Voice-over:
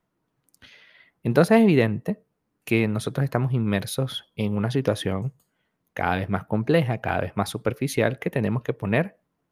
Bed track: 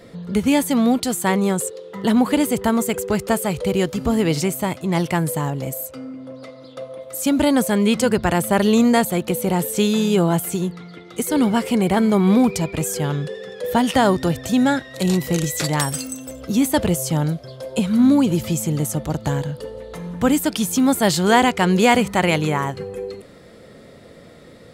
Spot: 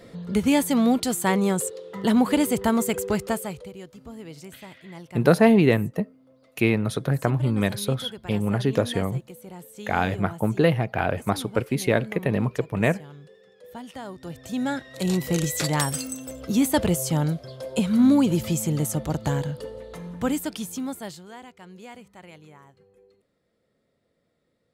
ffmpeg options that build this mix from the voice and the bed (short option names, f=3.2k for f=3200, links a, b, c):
-filter_complex "[0:a]adelay=3900,volume=0.5dB[a];[1:a]volume=15.5dB,afade=t=out:st=3.07:d=0.64:silence=0.11885,afade=t=in:st=14.16:d=1.25:silence=0.11885,afade=t=out:st=19.49:d=1.77:silence=0.0530884[b];[a][b]amix=inputs=2:normalize=0"